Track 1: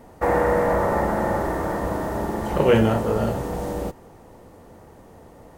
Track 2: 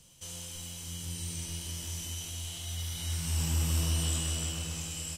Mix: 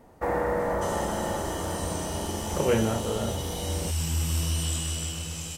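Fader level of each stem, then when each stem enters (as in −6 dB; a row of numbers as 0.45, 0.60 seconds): −7.0, +2.0 decibels; 0.00, 0.60 seconds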